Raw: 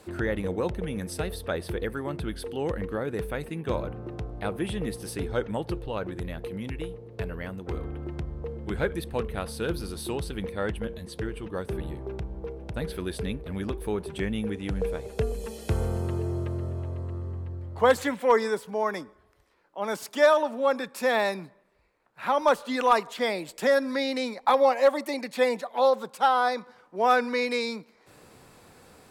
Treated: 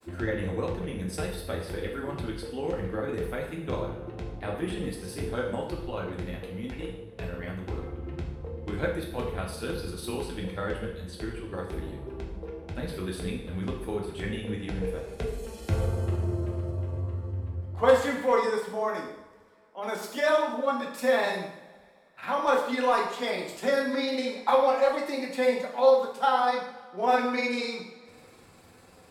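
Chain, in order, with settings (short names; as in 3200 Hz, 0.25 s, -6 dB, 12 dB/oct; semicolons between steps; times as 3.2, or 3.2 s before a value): grains 80 ms, grains 20/s, spray 12 ms, pitch spread up and down by 0 st; two-slope reverb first 0.7 s, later 2.6 s, from -21 dB, DRR -1.5 dB; gain -3 dB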